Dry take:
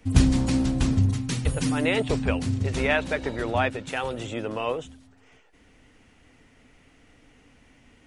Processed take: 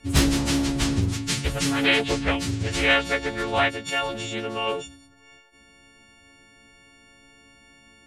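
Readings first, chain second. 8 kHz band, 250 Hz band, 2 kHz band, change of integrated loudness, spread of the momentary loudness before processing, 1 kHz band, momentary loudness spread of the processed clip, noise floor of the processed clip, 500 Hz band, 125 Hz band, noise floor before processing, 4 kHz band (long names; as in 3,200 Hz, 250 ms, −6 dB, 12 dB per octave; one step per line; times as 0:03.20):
+7.0 dB, −0.5 dB, +5.5 dB, +2.0 dB, 8 LU, +3.0 dB, 9 LU, −55 dBFS, +0.5 dB, −3.0 dB, −58 dBFS, +9.0 dB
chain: every partial snapped to a pitch grid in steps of 4 semitones
high-shelf EQ 8,800 Hz −9.5 dB
highs frequency-modulated by the lows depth 0.97 ms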